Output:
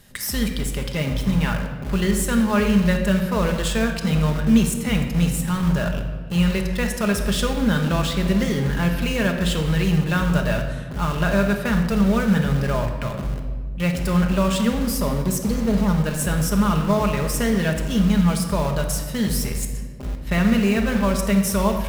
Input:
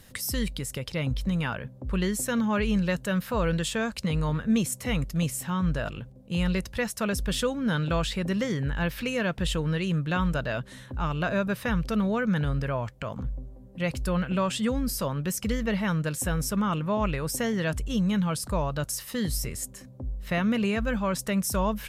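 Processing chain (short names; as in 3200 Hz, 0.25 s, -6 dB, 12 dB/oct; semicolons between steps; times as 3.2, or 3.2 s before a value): 14.87–15.98 band shelf 2300 Hz -15 dB 1.3 oct; in parallel at -6 dB: bit-crush 5-bit; on the sum: reverb RT60 1.5 s, pre-delay 5 ms, DRR 2.5 dB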